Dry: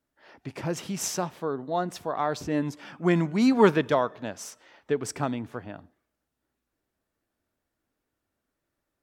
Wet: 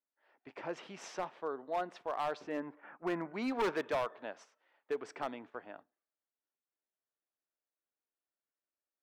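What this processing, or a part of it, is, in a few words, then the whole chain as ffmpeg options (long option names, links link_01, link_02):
walkie-talkie: -filter_complex "[0:a]asettb=1/sr,asplit=3[link_01][link_02][link_03];[link_01]atrim=end=2.574[link_04];[link_02]atrim=start=2.57:end=3.34,asetpts=PTS-STARTPTS,afade=type=in:duration=0.004:curve=qsin,afade=type=out:start_time=0.766:duration=0.004:curve=qsin,lowpass=frequency=2000:width=0.5412,lowpass=frequency=2000:width=1.3066[link_05];[link_03]atrim=start=3.336[link_06];[link_04][link_05]acrossfade=duration=0.004:curve1=hsin:curve2=qsin[link_07];[link_07][link_06]acrossfade=duration=0.004:curve1=qsin:curve2=hsin,highpass=440,lowpass=2700,asoftclip=type=hard:threshold=-23dB,agate=range=-11dB:threshold=-48dB:ratio=16:detection=peak,volume=-5.5dB"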